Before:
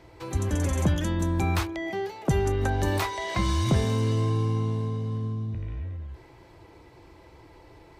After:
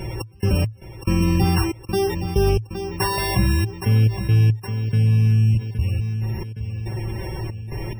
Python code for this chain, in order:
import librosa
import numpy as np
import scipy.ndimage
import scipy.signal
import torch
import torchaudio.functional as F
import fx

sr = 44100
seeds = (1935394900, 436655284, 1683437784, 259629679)

y = np.r_[np.sort(x[:len(x) // 16 * 16].reshape(-1, 16), axis=1).ravel(), x[len(x) // 16 * 16:]]
y = fx.rider(y, sr, range_db=3, speed_s=2.0)
y = y + 0.68 * np.pad(y, (int(5.3 * sr / 1000.0), 0))[:len(y)]
y = fx.step_gate(y, sr, bpm=70, pattern='x.x..xxx.', floor_db=-60.0, edge_ms=4.5)
y = fx.peak_eq(y, sr, hz=110.0, db=15.0, octaves=0.53)
y = fx.echo_feedback(y, sr, ms=817, feedback_pct=37, wet_db=-17.0)
y = fx.spec_topn(y, sr, count=64)
y = fx.low_shelf(y, sr, hz=79.0, db=7.0)
y = fx.env_flatten(y, sr, amount_pct=50)